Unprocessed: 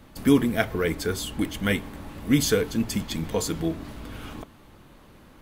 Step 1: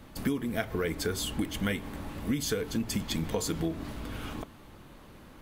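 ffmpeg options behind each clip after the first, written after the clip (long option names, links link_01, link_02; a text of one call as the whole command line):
ffmpeg -i in.wav -af "acompressor=threshold=-26dB:ratio=16" out.wav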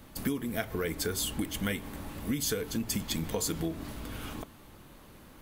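ffmpeg -i in.wav -af "crystalizer=i=1:c=0,volume=-2dB" out.wav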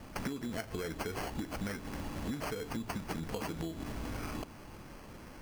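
ffmpeg -i in.wav -af "acrusher=samples=12:mix=1:aa=0.000001,acompressor=threshold=-38dB:ratio=6,volume=3dB" out.wav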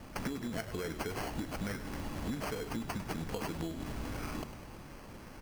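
ffmpeg -i in.wav -filter_complex "[0:a]asplit=8[link_01][link_02][link_03][link_04][link_05][link_06][link_07][link_08];[link_02]adelay=101,afreqshift=-73,volume=-11.5dB[link_09];[link_03]adelay=202,afreqshift=-146,volume=-16.1dB[link_10];[link_04]adelay=303,afreqshift=-219,volume=-20.7dB[link_11];[link_05]adelay=404,afreqshift=-292,volume=-25.2dB[link_12];[link_06]adelay=505,afreqshift=-365,volume=-29.8dB[link_13];[link_07]adelay=606,afreqshift=-438,volume=-34.4dB[link_14];[link_08]adelay=707,afreqshift=-511,volume=-39dB[link_15];[link_01][link_09][link_10][link_11][link_12][link_13][link_14][link_15]amix=inputs=8:normalize=0" out.wav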